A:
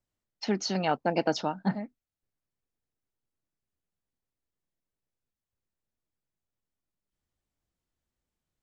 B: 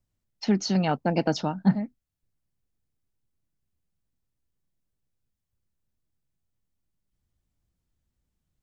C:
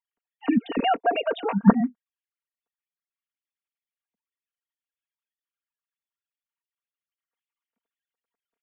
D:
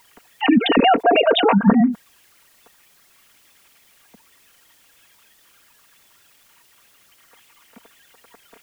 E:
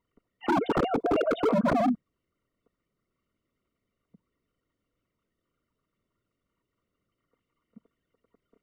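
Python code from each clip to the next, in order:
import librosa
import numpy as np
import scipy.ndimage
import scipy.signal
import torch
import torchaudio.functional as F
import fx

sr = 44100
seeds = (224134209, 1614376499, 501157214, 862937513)

y1 = fx.bass_treble(x, sr, bass_db=11, treble_db=2)
y2 = fx.sine_speech(y1, sr)
y2 = y2 + 0.76 * np.pad(y2, (int(4.3 * sr / 1000.0), 0))[:len(y2)]
y3 = fx.env_flatten(y2, sr, amount_pct=70)
y4 = np.convolve(y3, np.full(53, 1.0 / 53))[:len(y3)]
y4 = 10.0 ** (-18.0 / 20.0) * (np.abs((y4 / 10.0 ** (-18.0 / 20.0) + 3.0) % 4.0 - 2.0) - 1.0)
y4 = fx.noise_reduce_blind(y4, sr, reduce_db=9)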